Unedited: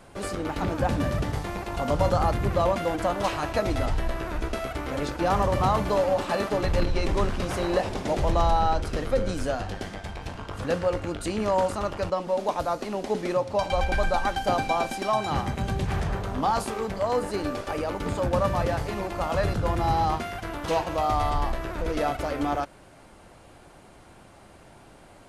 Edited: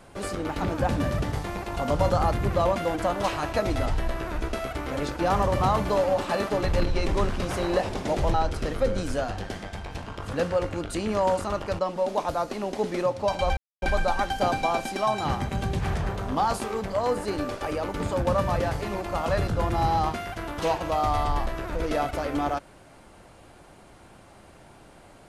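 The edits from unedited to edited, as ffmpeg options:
-filter_complex "[0:a]asplit=3[a][b][c];[a]atrim=end=8.342[d];[b]atrim=start=8.648:end=13.88,asetpts=PTS-STARTPTS,afade=t=out:st=5.228:d=0.004:c=hsin,apad=pad_dur=0.25[e];[c]atrim=start=13.88,asetpts=PTS-STARTPTS,afade=t=in:d=0.004:c=hsin[f];[e][f]concat=n=2:v=0:a=1[g];[d][g]acrossfade=d=0.004:c1=hsin:c2=hsin"

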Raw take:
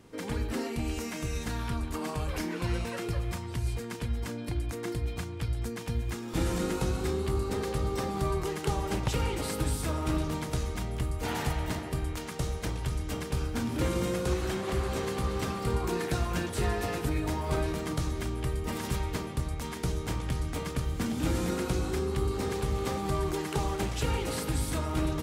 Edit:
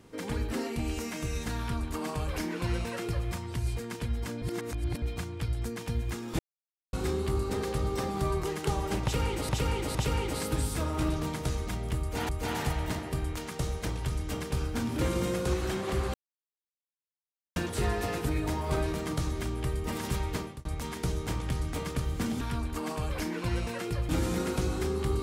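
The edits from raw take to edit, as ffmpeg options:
-filter_complex "[0:a]asplit=13[a][b][c][d][e][f][g][h][i][j][k][l][m];[a]atrim=end=4.422[n];[b]atrim=start=4.418:end=5.022,asetpts=PTS-STARTPTS,areverse[o];[c]atrim=start=5.018:end=6.39,asetpts=PTS-STARTPTS,afade=t=out:st=1.368:d=0.004:c=hsin[p];[d]atrim=start=6.39:end=6.93,asetpts=PTS-STARTPTS,volume=0[q];[e]atrim=start=6.93:end=9.492,asetpts=PTS-STARTPTS,afade=t=in:d=0.004:c=hsin[r];[f]atrim=start=9.028:end=9.492[s];[g]atrim=start=9.028:end=11.372[t];[h]atrim=start=11.088:end=14.94,asetpts=PTS-STARTPTS,afade=t=out:st=3.848:d=0.004:c=hsin[u];[i]atrim=start=14.94:end=16.36,asetpts=PTS-STARTPTS,volume=0[v];[j]atrim=start=16.36:end=19.45,asetpts=PTS-STARTPTS,afade=t=in:d=0.004:c=hsin,afade=t=out:st=2.84:d=0.25[w];[k]atrim=start=19.45:end=21.212,asetpts=PTS-STARTPTS,afade=t=in:d=0.004:c=hsin[x];[l]atrim=start=1.588:end=3.272[y];[m]atrim=start=21.208[z];[n][o]acrossfade=d=0.004:c1=hsin:c2=hsin[aa];[p][q][r]concat=n=3:v=0:a=1[ab];[aa][ab]acrossfade=d=0.004:c1=hsin:c2=hsin[ac];[ac][s]acrossfade=d=0.004:c1=hsin:c2=hsin[ad];[ad][t]acrossfade=d=0.004:c1=hsin:c2=hsin[ae];[u][v][w][x]concat=n=4:v=0:a=1[af];[ae][af]acrossfade=d=0.004:c1=hsin:c2=hsin[ag];[ag][y]acrossfade=d=0.004:c1=hsin:c2=hsin[ah];[ah][z]acrossfade=d=0.004:c1=hsin:c2=hsin"

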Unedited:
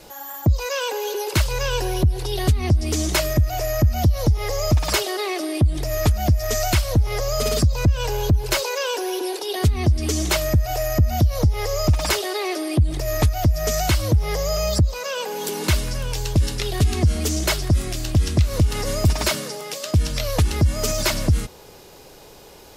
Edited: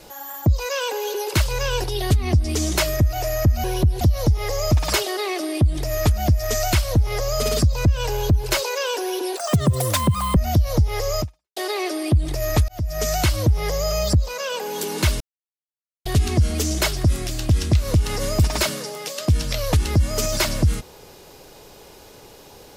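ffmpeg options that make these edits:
-filter_complex "[0:a]asplit=10[a][b][c][d][e][f][g][h][i][j];[a]atrim=end=1.842[k];[b]atrim=start=2.208:end=4.012[l];[c]atrim=start=1.838:end=2.212[m];[d]atrim=start=4.008:end=9.374[n];[e]atrim=start=9.37:end=11.02,asetpts=PTS-STARTPTS,asetrate=73206,aresample=44100,atrim=end_sample=43834,asetpts=PTS-STARTPTS[o];[f]atrim=start=11.016:end=12.22,asetpts=PTS-STARTPTS,afade=t=out:st=0.844:d=0.36:c=exp[p];[g]atrim=start=12.22:end=13.34,asetpts=PTS-STARTPTS,afade=t=in:d=0.004:c=hsin,afade=t=out:st=1.116:d=0.004:c=hsin[q];[h]atrim=start=13.34:end=15.86,asetpts=PTS-STARTPTS,afade=t=in:d=0.51:c=qsin,afade=t=out:st=2.516:d=0.004:c=hsin[r];[i]atrim=start=15.86:end=16.71,asetpts=PTS-STARTPTS,volume=0[s];[j]atrim=start=16.71,asetpts=PTS-STARTPTS,afade=t=in:d=0.004:c=hsin[t];[k][l]acrossfade=d=0.004:c1=hsin:c2=hsin[u];[u][m]acrossfade=d=0.004:c1=hsin:c2=hsin[v];[v][n]acrossfade=d=0.004:c1=hsin:c2=hsin[w];[w][o]acrossfade=d=0.004:c1=hsin:c2=hsin[x];[p][q][r][s][t]concat=n=5:v=0:a=1[y];[x][y]acrossfade=d=0.004:c1=hsin:c2=hsin"

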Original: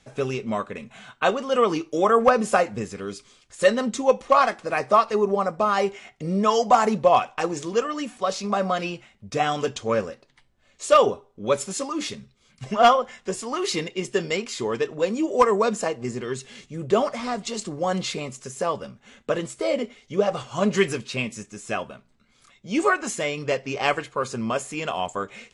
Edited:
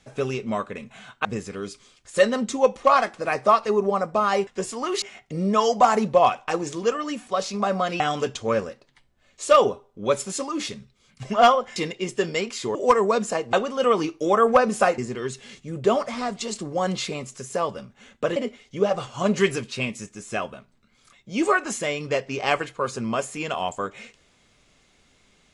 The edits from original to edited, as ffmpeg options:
-filter_complex "[0:a]asplit=10[a][b][c][d][e][f][g][h][i][j];[a]atrim=end=1.252[k];[b]atrim=start=2.698:end=5.922[l];[c]atrim=start=13.168:end=13.722[m];[d]atrim=start=5.918:end=8.902[n];[e]atrim=start=9.408:end=13.172[o];[f]atrim=start=13.718:end=14.712[p];[g]atrim=start=15.258:end=16.042[q];[h]atrim=start=1.248:end=2.702[r];[i]atrim=start=16.038:end=19.422[s];[j]atrim=start=19.728[t];[k][l]acrossfade=d=0.004:c1=hsin:c2=hsin[u];[u][m]acrossfade=d=0.004:c1=hsin:c2=hsin[v];[v][n]acrossfade=d=0.004:c1=hsin:c2=hsin[w];[w][o]acrossfade=d=0.004:c1=hsin:c2=hsin[x];[x][p]acrossfade=d=0.004:c1=hsin:c2=hsin[y];[y][q]acrossfade=d=0.004:c1=hsin:c2=hsin[z];[z][r]acrossfade=d=0.004:c1=hsin:c2=hsin[aa];[aa][s]acrossfade=d=0.004:c1=hsin:c2=hsin[ab];[ab][t]acrossfade=d=0.004:c1=hsin:c2=hsin"

